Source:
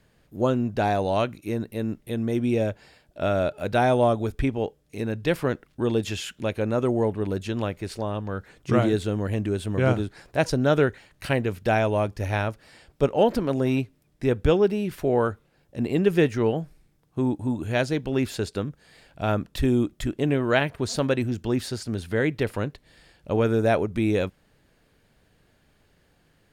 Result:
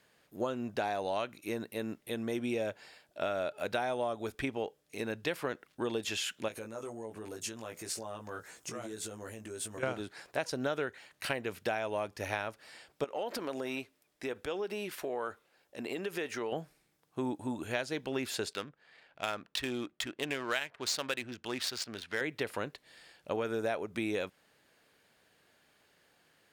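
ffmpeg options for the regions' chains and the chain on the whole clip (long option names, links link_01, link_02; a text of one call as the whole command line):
ffmpeg -i in.wav -filter_complex "[0:a]asettb=1/sr,asplit=3[link_01][link_02][link_03];[link_01]atrim=end=6.484[link_04];[link_02]atrim=start=6.48:end=9.83,asetpts=PTS-STARTPTS,afade=type=in:duration=0.004:curve=qsin,afade=type=out:start_time=3.346:duration=0.004:curve=qsin,highshelf=frequency=4900:width_type=q:width=1.5:gain=8.5,asplit=2[link_05][link_06];[link_06]adelay=18,volume=-3.5dB[link_07];[link_05][link_07]amix=inputs=2:normalize=0,atrim=end_sample=147735,acompressor=threshold=-31dB:ratio=12:attack=3.2:release=140:knee=1:detection=peak[link_08];[link_03]atrim=start=9.826[link_09];[link_04][link_08]acrossfade=duration=0.004:curve1=hsin:curve2=qsin[link_10];[link_10][link_09]acrossfade=duration=0.004:curve1=qsin:curve2=hsin,asettb=1/sr,asplit=3[link_11][link_12][link_13];[link_11]atrim=end=13.044[link_14];[link_12]atrim=start=13.04:end=16.52,asetpts=PTS-STARTPTS,afade=type=in:duration=0.004:curve=qsin,afade=type=out:start_time=3.476:duration=0.004:curve=qsin,equalizer=frequency=130:width=0.85:gain=-9.5,acompressor=threshold=-26dB:ratio=6:attack=3.2:release=140:knee=1:detection=peak[link_15];[link_13]atrim=start=16.516[link_16];[link_14][link_15]acrossfade=duration=0.004:curve1=hsin:curve2=qsin[link_17];[link_17][link_16]acrossfade=duration=0.004:curve1=qsin:curve2=hsin,asettb=1/sr,asplit=3[link_18][link_19][link_20];[link_18]atrim=end=18.534[link_21];[link_19]atrim=start=18.53:end=22.21,asetpts=PTS-STARTPTS,afade=type=in:duration=0.004:curve=qsin,afade=type=out:start_time=3.676:duration=0.004:curve=qsin,tiltshelf=frequency=1400:gain=-7,adynamicsmooth=sensitivity=7:basefreq=1500[link_22];[link_20]atrim=start=22.206[link_23];[link_21][link_22]acrossfade=duration=0.004:curve1=hsin:curve2=qsin[link_24];[link_24][link_23]acrossfade=duration=0.004:curve1=qsin:curve2=hsin,highpass=frequency=680:poles=1,acompressor=threshold=-30dB:ratio=6" out.wav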